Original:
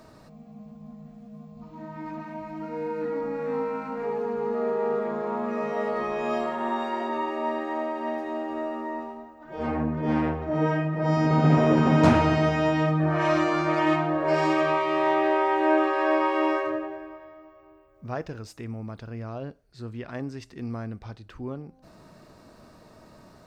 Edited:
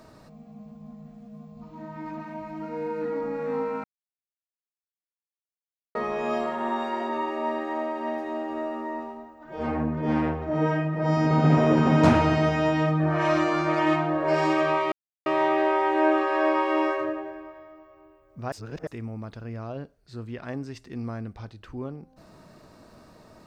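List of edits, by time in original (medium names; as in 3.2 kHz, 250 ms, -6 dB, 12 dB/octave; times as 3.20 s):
3.84–5.95 s: mute
14.92 s: insert silence 0.34 s
18.18–18.53 s: reverse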